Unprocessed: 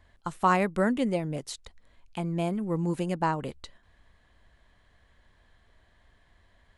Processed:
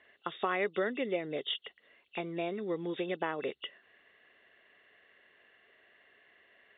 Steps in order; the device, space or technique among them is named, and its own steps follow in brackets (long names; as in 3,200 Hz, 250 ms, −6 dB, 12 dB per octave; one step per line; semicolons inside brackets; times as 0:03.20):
hearing aid with frequency lowering (hearing-aid frequency compression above 2,600 Hz 4 to 1; downward compressor 4 to 1, threshold −29 dBFS, peak gain reduction 10 dB; loudspeaker in its box 380–6,600 Hz, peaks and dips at 410 Hz +8 dB, 930 Hz −9 dB, 2,000 Hz +8 dB, 4,900 Hz −7 dB)
level +1.5 dB